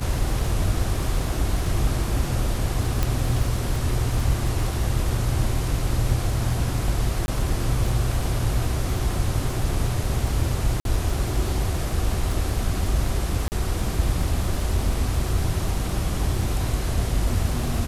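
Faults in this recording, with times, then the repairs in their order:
crackle 21 per s -27 dBFS
3.03 s: pop -8 dBFS
7.26–7.28 s: dropout 21 ms
10.80–10.85 s: dropout 52 ms
13.48–13.52 s: dropout 39 ms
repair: de-click; interpolate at 7.26 s, 21 ms; interpolate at 10.80 s, 52 ms; interpolate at 13.48 s, 39 ms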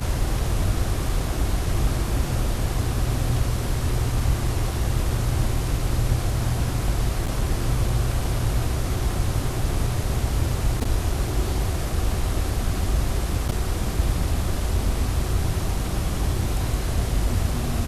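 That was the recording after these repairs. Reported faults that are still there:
nothing left

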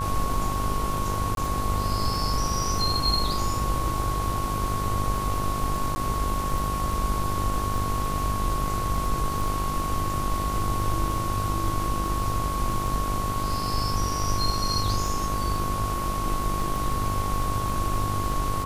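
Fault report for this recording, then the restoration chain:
buzz 50 Hz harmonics 30 -31 dBFS
crackle 22 per s -29 dBFS
whine 1.1 kHz -29 dBFS
1.35–1.37 s: dropout 22 ms
5.95–5.96 s: dropout 10 ms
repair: de-click; de-hum 50 Hz, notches 30; band-stop 1.1 kHz, Q 30; interpolate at 1.35 s, 22 ms; interpolate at 5.95 s, 10 ms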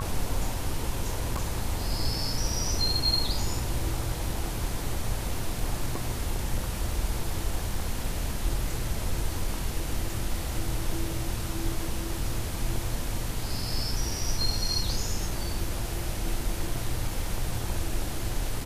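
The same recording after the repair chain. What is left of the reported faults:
nothing left

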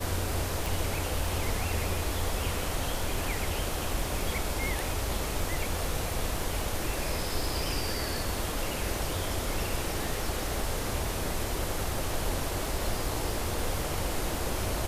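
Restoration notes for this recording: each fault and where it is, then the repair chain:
crackle 49 per s -38 dBFS
0.66 s: pop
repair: de-click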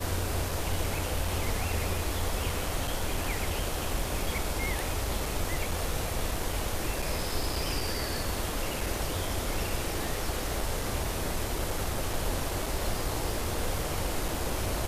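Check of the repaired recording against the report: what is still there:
nothing left

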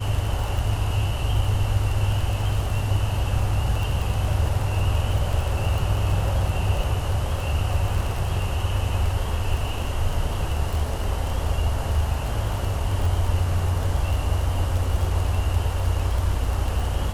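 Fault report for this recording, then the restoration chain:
crackle 23 per s -25 dBFS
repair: de-click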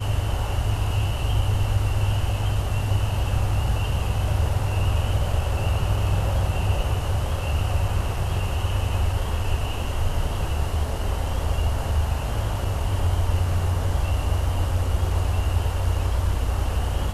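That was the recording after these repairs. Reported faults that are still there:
nothing left

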